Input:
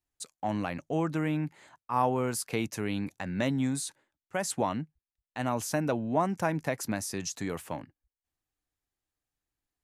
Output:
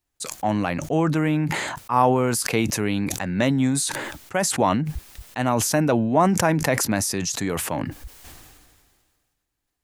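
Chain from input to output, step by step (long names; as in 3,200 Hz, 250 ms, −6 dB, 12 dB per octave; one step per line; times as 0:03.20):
level that may fall only so fast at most 32 dB per second
level +8 dB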